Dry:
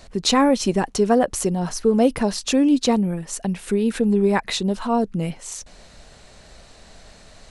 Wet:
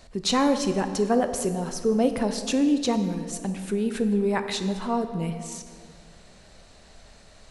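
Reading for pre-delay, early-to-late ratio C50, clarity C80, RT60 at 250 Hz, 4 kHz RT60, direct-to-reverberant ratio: 16 ms, 9.0 dB, 10.0 dB, 2.5 s, 1.4 s, 8.0 dB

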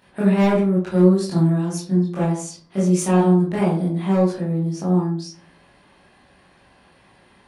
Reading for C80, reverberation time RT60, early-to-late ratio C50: 9.0 dB, 0.45 s, 4.0 dB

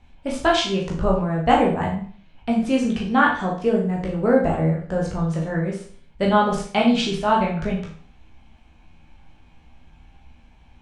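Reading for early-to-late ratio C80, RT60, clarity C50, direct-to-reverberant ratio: 10.0 dB, 0.45 s, 5.5 dB, -3.0 dB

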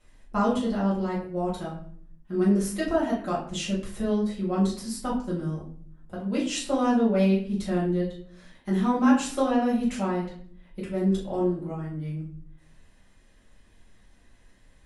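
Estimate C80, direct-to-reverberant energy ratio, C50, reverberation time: 10.5 dB, -8.5 dB, 5.5 dB, 0.55 s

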